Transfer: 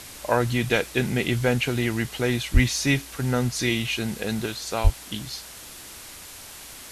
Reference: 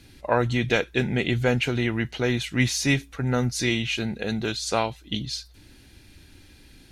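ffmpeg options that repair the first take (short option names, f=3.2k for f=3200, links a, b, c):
-filter_complex "[0:a]asplit=3[a][b][c];[a]afade=t=out:st=2.53:d=0.02[d];[b]highpass=f=140:w=0.5412,highpass=f=140:w=1.3066,afade=t=in:st=2.53:d=0.02,afade=t=out:st=2.65:d=0.02[e];[c]afade=t=in:st=2.65:d=0.02[f];[d][e][f]amix=inputs=3:normalize=0,asplit=3[g][h][i];[g]afade=t=out:st=4.83:d=0.02[j];[h]highpass=f=140:w=0.5412,highpass=f=140:w=1.3066,afade=t=in:st=4.83:d=0.02,afade=t=out:st=4.95:d=0.02[k];[i]afade=t=in:st=4.95:d=0.02[l];[j][k][l]amix=inputs=3:normalize=0,afwtdn=0.01,asetnsamples=n=441:p=0,asendcmd='4.46 volume volume 4dB',volume=0dB"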